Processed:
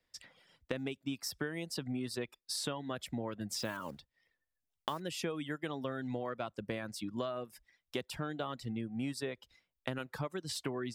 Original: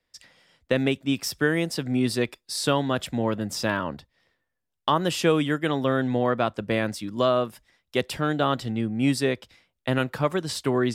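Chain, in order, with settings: 3.58–5.04 s: block-companded coder 5-bit; reverb removal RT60 0.65 s; compression 6:1, threshold -32 dBFS, peak gain reduction 15.5 dB; trim -3 dB

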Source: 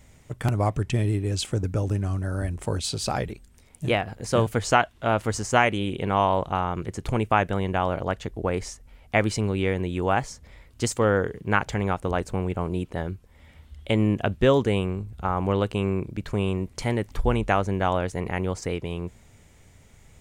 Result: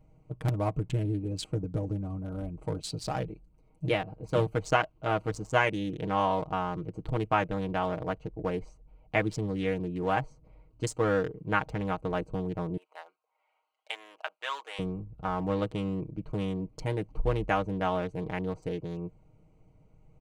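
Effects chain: local Wiener filter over 25 samples; 12.77–14.79 s: high-pass 800 Hz 24 dB/octave; comb 6.4 ms, depth 75%; trim -6.5 dB

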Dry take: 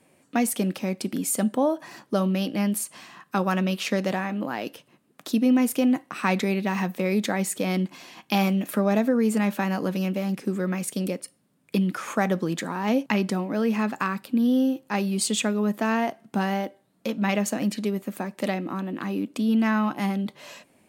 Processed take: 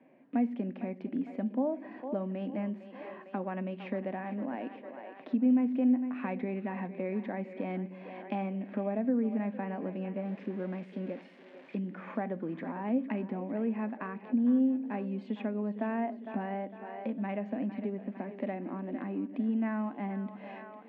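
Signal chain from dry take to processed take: 10.25–11.79 s: zero-crossing glitches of -18.5 dBFS; on a send: two-band feedback delay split 350 Hz, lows 91 ms, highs 455 ms, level -14 dB; on the sum: harmonic-percussive split percussive -5 dB; compression 2:1, threshold -39 dBFS, peak gain reduction 12 dB; cabinet simulation 210–2200 Hz, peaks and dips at 250 Hz +9 dB, 650 Hz +4 dB, 1.3 kHz -9 dB

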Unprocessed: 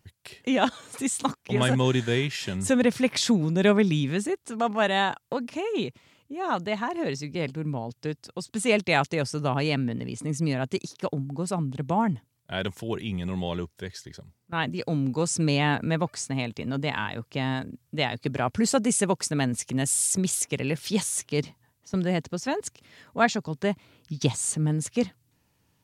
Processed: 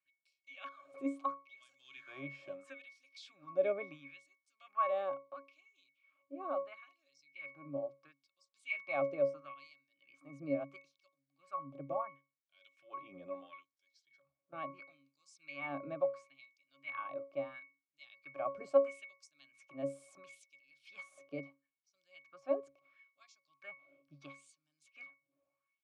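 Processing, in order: LFO high-pass sine 0.74 Hz 500–5600 Hz; pitch-class resonator C#, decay 0.29 s; trim +6 dB

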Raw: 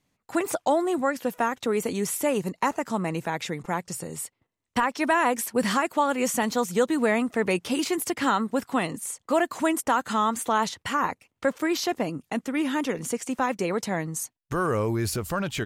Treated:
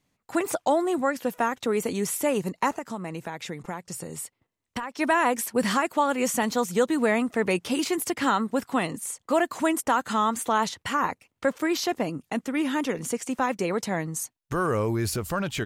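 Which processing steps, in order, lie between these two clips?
2.72–4.99 s: compression 4:1, threshold -31 dBFS, peak gain reduction 10.5 dB

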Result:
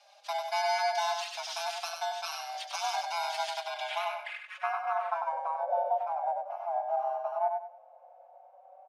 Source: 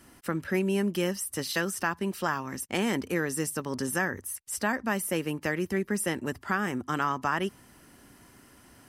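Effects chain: bit-reversed sample order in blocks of 32 samples; 4.83–6.40 s: wind noise 120 Hz -43 dBFS; frequency shift +500 Hz; on a send: feedback delay 97 ms, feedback 26%, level -5 dB; on the sum: low-pass sweep 4.6 kHz -> 730 Hz, 3.51–5.66 s; endless flanger 4.5 ms +0.3 Hz; trim -1.5 dB

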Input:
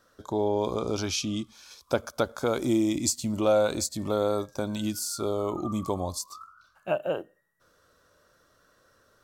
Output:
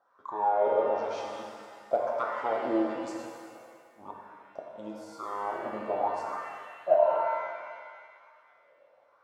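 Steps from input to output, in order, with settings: in parallel at -8.5 dB: integer overflow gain 13.5 dB; 3.17–4.78 s: on the sum: inverted gate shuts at -19 dBFS, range -38 dB; wah-wah 1 Hz 540–1100 Hz, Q 9.2; pitch-shifted reverb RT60 1.8 s, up +7 st, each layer -8 dB, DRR -1 dB; trim +7 dB

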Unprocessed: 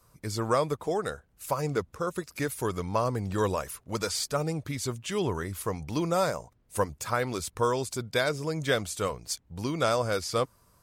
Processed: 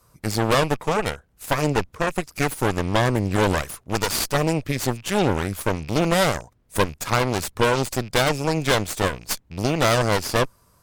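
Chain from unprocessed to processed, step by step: rattle on loud lows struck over -42 dBFS, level -34 dBFS; Chebyshev shaper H 8 -11 dB, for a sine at -11.5 dBFS; trim +4 dB

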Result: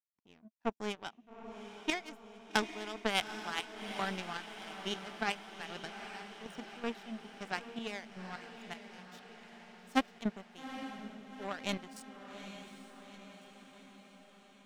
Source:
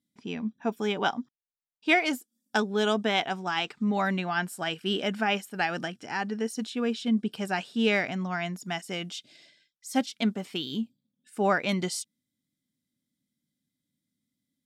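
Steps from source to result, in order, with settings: power-law waveshaper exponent 2; trance gate "x..xx..x." 79 bpm -12 dB; echo that smears into a reverb 834 ms, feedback 60%, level -9.5 dB; trim +2.5 dB

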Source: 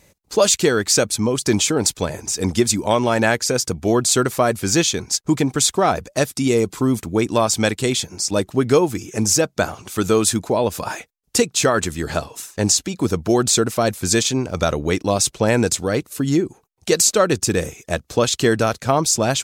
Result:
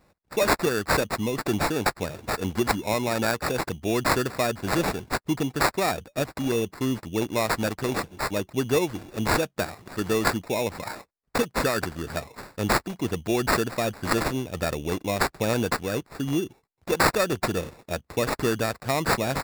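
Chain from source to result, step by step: dynamic bell 7.5 kHz, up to +6 dB, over -33 dBFS, Q 2.7; sample-rate reducer 3.1 kHz, jitter 0%; trim -8 dB

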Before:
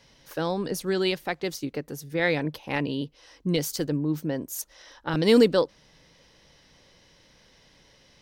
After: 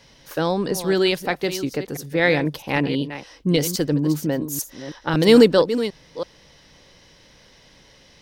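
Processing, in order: chunks repeated in reverse 328 ms, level -11.5 dB; trim +6 dB

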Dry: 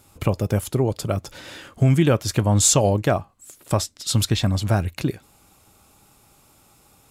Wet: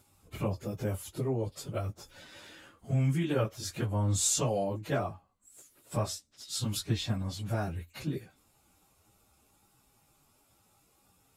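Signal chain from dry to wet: plain phase-vocoder stretch 1.6×; trim -9 dB

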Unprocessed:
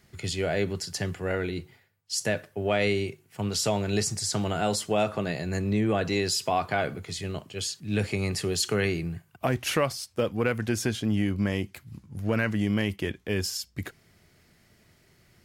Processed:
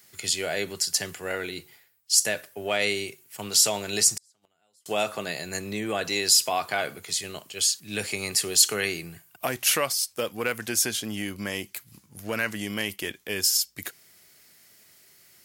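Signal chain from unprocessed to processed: RIAA curve recording; 4.14–4.86 s: inverted gate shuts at -19 dBFS, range -42 dB

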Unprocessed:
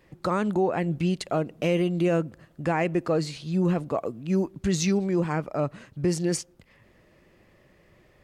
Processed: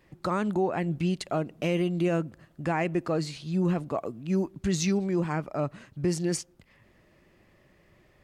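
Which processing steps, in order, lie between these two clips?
peaking EQ 490 Hz -4 dB 0.31 oct; trim -2 dB

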